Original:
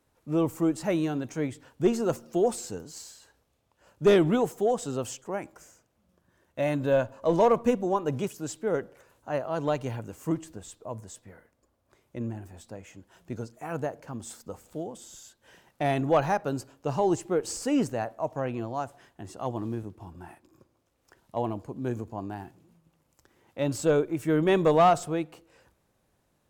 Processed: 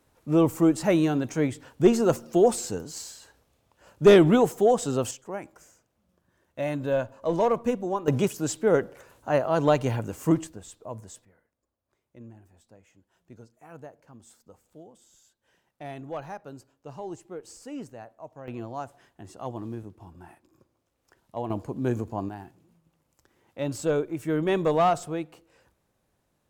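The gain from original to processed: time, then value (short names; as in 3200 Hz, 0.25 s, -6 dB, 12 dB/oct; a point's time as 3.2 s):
+5 dB
from 5.11 s -2 dB
from 8.08 s +6.5 dB
from 10.47 s -0.5 dB
from 11.25 s -12.5 dB
from 18.48 s -3 dB
from 21.5 s +4.5 dB
from 22.29 s -2 dB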